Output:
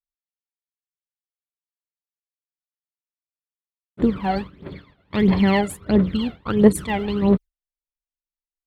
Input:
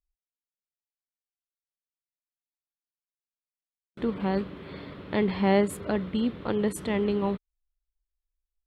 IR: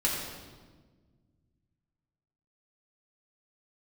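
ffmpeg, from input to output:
-af "aphaser=in_gain=1:out_gain=1:delay=1.5:decay=0.74:speed=1.5:type=triangular,agate=range=-33dB:threshold=-27dB:ratio=3:detection=peak,volume=4dB"

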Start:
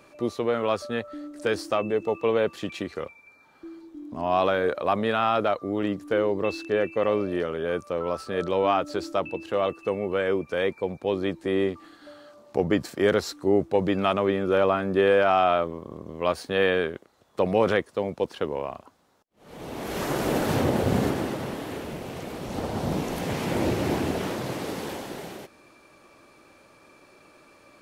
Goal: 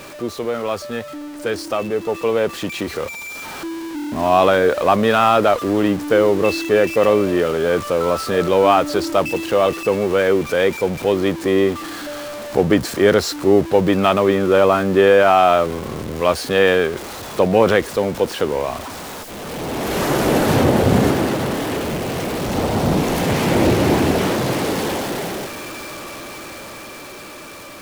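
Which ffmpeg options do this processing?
-af "aeval=exprs='val(0)+0.5*0.0224*sgn(val(0))':c=same,dynaudnorm=f=640:g=9:m=9dB,volume=1dB"

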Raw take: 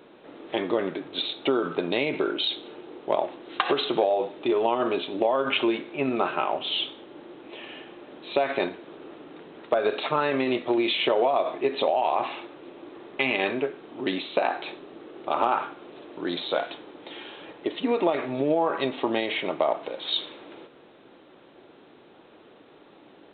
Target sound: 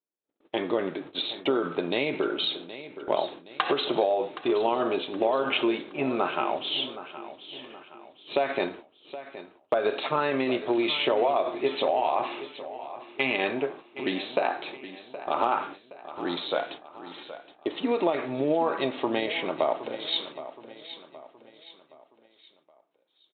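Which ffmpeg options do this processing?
-filter_complex "[0:a]agate=range=-47dB:threshold=-39dB:ratio=16:detection=peak,asplit=2[a][b];[b]aecho=0:1:770|1540|2310|3080:0.2|0.0858|0.0369|0.0159[c];[a][c]amix=inputs=2:normalize=0,volume=-1.5dB"

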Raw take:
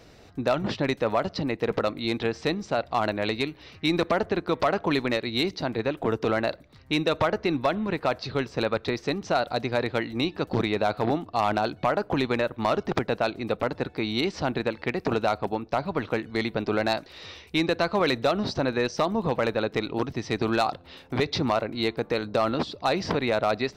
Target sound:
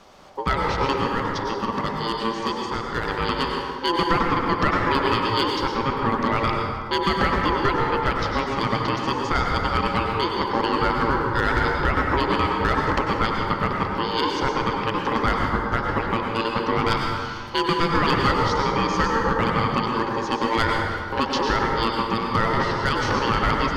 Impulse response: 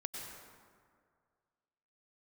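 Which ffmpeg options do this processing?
-filter_complex "[0:a]asettb=1/sr,asplit=3[a][b][c];[a]atrim=end=0.974[d];[b]atrim=start=0.97:end=3.11,asetpts=PTS-STARTPTS,afade=t=in:d=0.004:c=qsin,afade=t=out:st=2.136:d=0.004:c=qsin,equalizer=f=160:t=o:w=0.67:g=-7,equalizer=f=630:t=o:w=0.67:g=-7,equalizer=f=1.6k:t=o:w=0.67:g=-8[e];[c]atrim=start=3.106[f];[d][e]acrossfade=d=0.004:c1=hsin:c2=qsin[g];[g][f]acrossfade=d=0.004:c1=qsin:c2=hsin,aeval=exprs='val(0)*sin(2*PI*680*n/s)':c=same[h];[1:a]atrim=start_sample=2205[i];[h][i]afir=irnorm=-1:irlink=0,volume=7.5dB"

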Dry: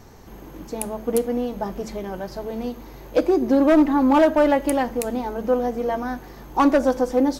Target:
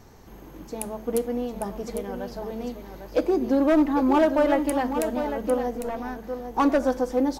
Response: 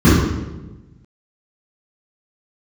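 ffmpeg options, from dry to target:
-filter_complex "[0:a]asettb=1/sr,asplit=3[a][b][c];[a]atrim=end=5.774[d];[b]atrim=start=5.77:end=6.58,asetpts=PTS-STARTPTS,afade=t=in:d=0.004:c=qsin,afade=t=out:st=0.806:d=0.004:c=qsin,aeval=exprs='(tanh(8.91*val(0)+0.55)-tanh(0.55))/8.91':c=same[e];[c]atrim=start=6.576[f];[d][e]acrossfade=d=0.004:c1=hsin:c2=qsin[g];[g][f]acrossfade=d=0.004:c1=qsin:c2=hsin,asplit=2[h][i];[i]aecho=0:1:802:0.376[j];[h][j]amix=inputs=2:normalize=0,volume=-4dB"

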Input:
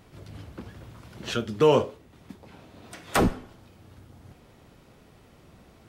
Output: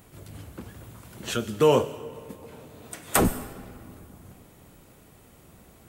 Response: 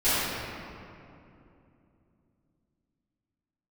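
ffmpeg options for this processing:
-filter_complex "[0:a]aexciter=amount=3.6:drive=5:freq=7k,asplit=2[a][b];[b]aemphasis=mode=production:type=50kf[c];[1:a]atrim=start_sample=2205,adelay=94[d];[c][d]afir=irnorm=-1:irlink=0,volume=-33.5dB[e];[a][e]amix=inputs=2:normalize=0"

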